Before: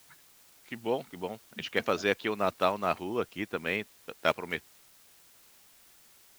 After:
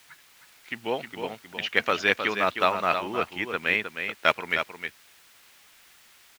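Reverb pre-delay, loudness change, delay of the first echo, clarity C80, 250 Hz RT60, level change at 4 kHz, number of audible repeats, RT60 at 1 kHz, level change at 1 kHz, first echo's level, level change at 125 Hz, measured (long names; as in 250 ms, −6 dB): no reverb audible, +5.5 dB, 312 ms, no reverb audible, no reverb audible, +7.5 dB, 1, no reverb audible, +6.0 dB, −7.5 dB, 0.0 dB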